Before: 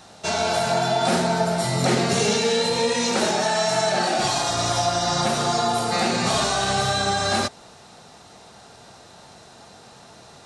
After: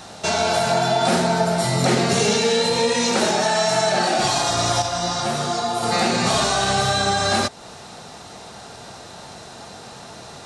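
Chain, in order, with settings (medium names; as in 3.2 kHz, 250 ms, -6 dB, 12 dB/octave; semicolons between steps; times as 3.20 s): in parallel at +3 dB: compression, threshold -33 dBFS, peak gain reduction 16 dB; 4.82–5.83 s: on the sum: detune thickener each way 21 cents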